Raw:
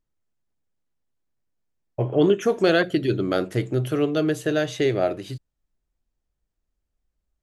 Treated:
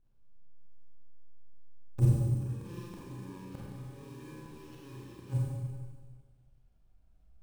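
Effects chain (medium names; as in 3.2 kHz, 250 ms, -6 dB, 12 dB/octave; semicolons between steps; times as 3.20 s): bit-reversed sample order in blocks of 64 samples; transient shaper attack -12 dB, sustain +5 dB; bass shelf 190 Hz -10 dB; band-stop 2 kHz, Q 6.8; inverted gate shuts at -19 dBFS, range -30 dB; RIAA curve playback; low-pass that closes with the level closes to 340 Hz, closed at -36 dBFS; sample-rate reducer 8.8 kHz, jitter 20%; Schroeder reverb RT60 1.6 s, combs from 32 ms, DRR -5.5 dB; trim +1.5 dB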